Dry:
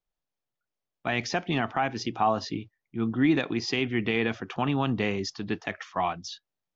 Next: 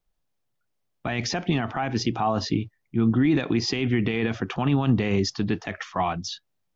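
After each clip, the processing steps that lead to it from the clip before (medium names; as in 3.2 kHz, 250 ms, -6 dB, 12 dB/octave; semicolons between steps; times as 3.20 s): peak limiter -21.5 dBFS, peak gain reduction 8.5 dB; bass shelf 220 Hz +8 dB; trim +5.5 dB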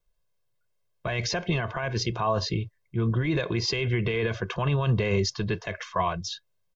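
comb 1.9 ms, depth 88%; trim -2.5 dB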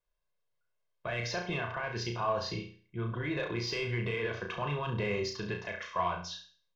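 overdrive pedal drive 9 dB, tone 2.5 kHz, clips at -13 dBFS; flutter echo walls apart 5.8 m, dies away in 0.43 s; trim -8 dB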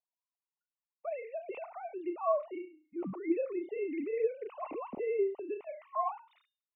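formants replaced by sine waves; boxcar filter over 27 samples; trim +2 dB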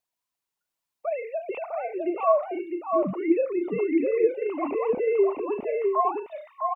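delay 655 ms -4 dB; trim +9 dB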